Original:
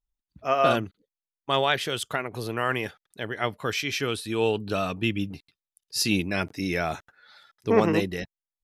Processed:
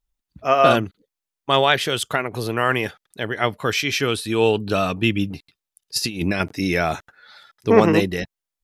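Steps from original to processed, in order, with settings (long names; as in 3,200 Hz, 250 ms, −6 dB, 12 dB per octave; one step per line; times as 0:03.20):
0:05.96–0:06.40: compressor whose output falls as the input rises −29 dBFS, ratio −0.5
level +6.5 dB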